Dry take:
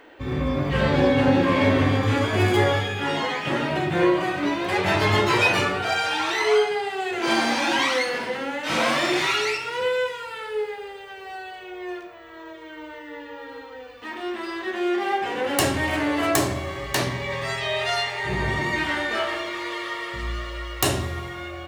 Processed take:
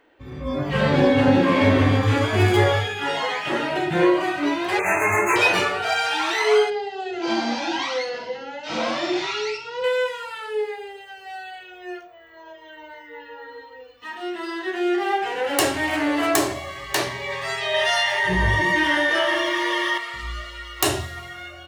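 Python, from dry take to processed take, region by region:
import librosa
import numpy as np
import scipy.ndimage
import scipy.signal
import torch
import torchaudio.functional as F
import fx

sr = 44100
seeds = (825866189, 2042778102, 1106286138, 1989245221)

y = fx.chain(x, sr, fx.brickwall_bandstop(low_hz=2700.0, high_hz=6100.0),
    fx.tilt_eq(slope=2.0), at=(4.79, 5.36))
y = fx.chain(y, sr, fx.lowpass(hz=5700.0, slope=24),
    fx.peak_eq(hz=1900.0, db=-8.0, octaves=2.2), at=(6.7, 9.84))
y = fx.chain(y, sr, fx.ripple_eq(per_octave=1.2, db=9),
    fx.env_flatten(amount_pct=50), at=(17.74, 19.98))
y = fx.noise_reduce_blind(y, sr, reduce_db=12)
y = fx.low_shelf(y, sr, hz=170.0, db=3.0)
y = y * 10.0 ** (1.5 / 20.0)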